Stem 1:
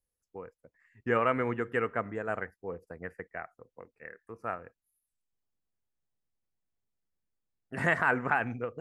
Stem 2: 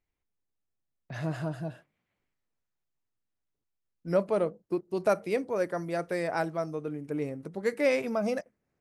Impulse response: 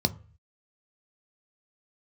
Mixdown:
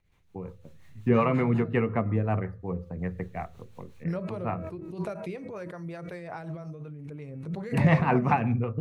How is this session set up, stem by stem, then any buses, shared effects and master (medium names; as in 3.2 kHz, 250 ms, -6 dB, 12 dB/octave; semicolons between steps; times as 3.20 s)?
+2.0 dB, 0.00 s, send -5.5 dB, none
-5.5 dB, 0.00 s, send -20.5 dB, de-hum 320.2 Hz, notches 8; swell ahead of each attack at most 27 dB/s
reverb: on, RT60 0.40 s, pre-delay 3 ms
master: rotary cabinet horn 5.5 Hz; treble shelf 6.3 kHz -11 dB